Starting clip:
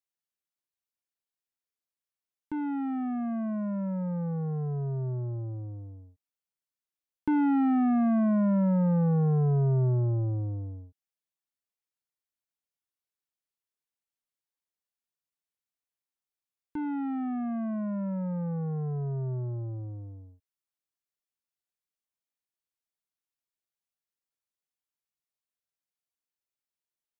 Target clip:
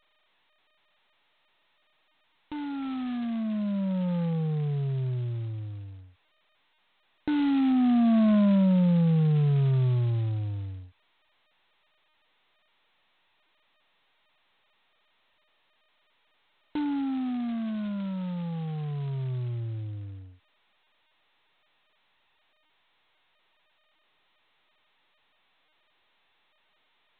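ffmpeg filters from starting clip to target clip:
ffmpeg -i in.wav -filter_complex "[0:a]asettb=1/sr,asplit=3[link_01][link_02][link_03];[link_01]atrim=end=7.304[link_04];[link_02]atrim=start=7.3:end=9.44,asetpts=PTS-STARTPTS,afade=type=in:duration=0.004:curve=qsin,afade=type=out:start_time=2.136:duration=0.004:curve=qsin,highshelf=frequency=2100:gain=-3.5[link_05];[link_03]atrim=start=9.436[link_06];[link_04][link_05]acrossfade=duration=0.004:curve1=hsin:curve2=qsin[link_07];[link_07][link_06]acrossfade=duration=0.004:curve1=qsin:curve2=hsin,aphaser=in_gain=1:out_gain=1:delay=1.2:decay=0.47:speed=0.24:type=triangular,volume=-2dB" -ar 8000 -c:a adpcm_g726 -b:a 16k out.wav

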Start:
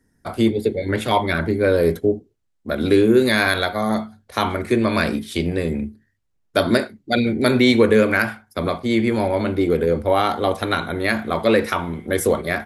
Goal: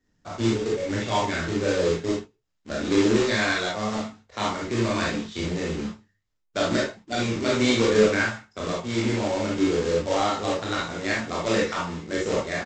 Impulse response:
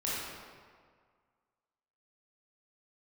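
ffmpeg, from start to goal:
-filter_complex "[0:a]aresample=16000,acrusher=bits=2:mode=log:mix=0:aa=0.000001,aresample=44100,flanger=delay=2.6:depth=8:regen=78:speed=1.4:shape=sinusoidal[link_01];[1:a]atrim=start_sample=2205,afade=type=out:start_time=0.13:duration=0.01,atrim=end_sample=6174[link_02];[link_01][link_02]afir=irnorm=-1:irlink=0,volume=-4.5dB"

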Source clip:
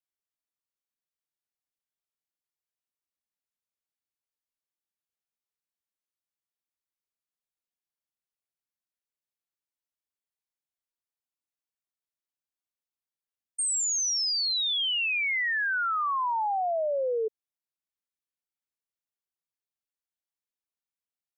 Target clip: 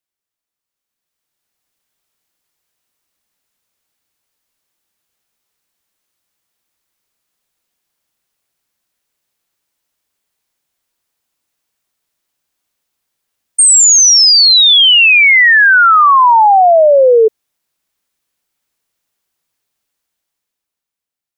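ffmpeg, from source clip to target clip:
ffmpeg -i in.wav -af "dynaudnorm=framelen=230:gausssize=11:maxgain=13dB,volume=8dB" out.wav

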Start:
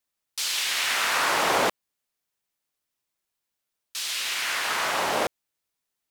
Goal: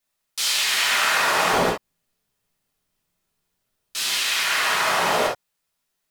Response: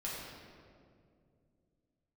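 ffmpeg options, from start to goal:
-filter_complex "[0:a]asettb=1/sr,asplit=3[link_01][link_02][link_03];[link_01]atrim=end=1.534[link_04];[link_02]atrim=start=1.53:end=4.19,asetpts=PTS-STARTPTS,afade=type=in:duration=0.004:curve=qsin,afade=type=out:start_time=2.656:duration=0.004:curve=qsin,lowshelf=frequency=390:gain=12[link_05];[link_03]atrim=start=4.186[link_06];[link_04][link_05]acrossfade=duration=0.004:curve1=hsin:curve2=qsin[link_07];[link_07][link_06]acrossfade=duration=0.004:curve1=qsin:curve2=hsin,acompressor=threshold=-23dB:ratio=6[link_08];[1:a]atrim=start_sample=2205,atrim=end_sample=3528[link_09];[link_08][link_09]afir=irnorm=-1:irlink=0,volume=7.5dB"

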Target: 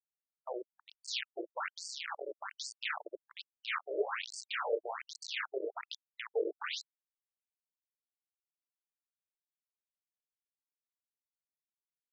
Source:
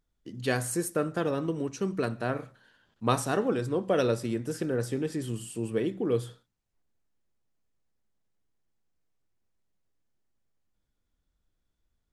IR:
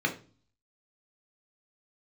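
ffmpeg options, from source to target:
-filter_complex "[0:a]equalizer=frequency=7900:width=0.65:gain=-9.5,acrossover=split=200|5900[link_01][link_02][link_03];[link_03]adelay=180[link_04];[link_02]adelay=610[link_05];[link_01][link_05][link_04]amix=inputs=3:normalize=0,asplit=2[link_06][link_07];[link_07]acompressor=threshold=-37dB:ratio=12,volume=-0.5dB[link_08];[link_06][link_08]amix=inputs=2:normalize=0,aeval=exprs='val(0)+0.00355*(sin(2*PI*60*n/s)+sin(2*PI*2*60*n/s)/2+sin(2*PI*3*60*n/s)/3+sin(2*PI*4*60*n/s)/4+sin(2*PI*5*60*n/s)/5)':channel_layout=same,aeval=exprs='(tanh(11.2*val(0)+0.3)-tanh(0.3))/11.2':channel_layout=same,flanger=delay=4.2:depth=5.4:regen=51:speed=0.62:shape=sinusoidal,asplit=2[link_09][link_10];[link_10]adelay=30,volume=-4dB[link_11];[link_09][link_11]amix=inputs=2:normalize=0,acrusher=bits=4:mix=0:aa=0.000001,equalizer=frequency=2800:width=0.91:gain=5.5,afftfilt=real='re*between(b*sr/1024,430*pow(6400/430,0.5+0.5*sin(2*PI*1.2*pts/sr))/1.41,430*pow(6400/430,0.5+0.5*sin(2*PI*1.2*pts/sr))*1.41)':imag='im*between(b*sr/1024,430*pow(6400/430,0.5+0.5*sin(2*PI*1.2*pts/sr))/1.41,430*pow(6400/430,0.5+0.5*sin(2*PI*1.2*pts/sr))*1.41)':win_size=1024:overlap=0.75"

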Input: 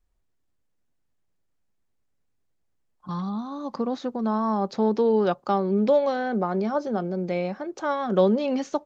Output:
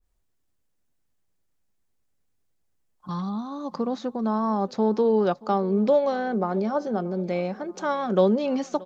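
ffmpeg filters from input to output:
ffmpeg -i in.wav -filter_complex "[0:a]highshelf=frequency=5300:gain=6.5,asplit=2[link_01][link_02];[link_02]aecho=0:1:628|1256|1884|2512:0.0794|0.0413|0.0215|0.0112[link_03];[link_01][link_03]amix=inputs=2:normalize=0,adynamicequalizer=threshold=0.0112:dfrequency=1500:dqfactor=0.7:tfrequency=1500:tqfactor=0.7:attack=5:release=100:ratio=0.375:range=2:mode=cutabove:tftype=highshelf" out.wav

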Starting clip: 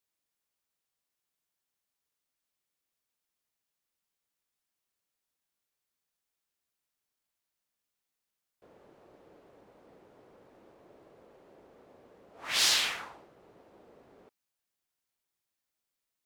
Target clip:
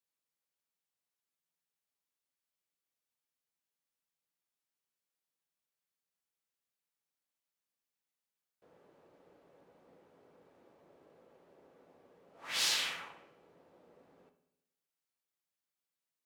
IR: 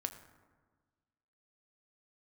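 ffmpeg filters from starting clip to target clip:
-filter_complex "[0:a]lowshelf=frequency=66:gain=-11[link_01];[1:a]atrim=start_sample=2205,asetrate=79380,aresample=44100[link_02];[link_01][link_02]afir=irnorm=-1:irlink=0"

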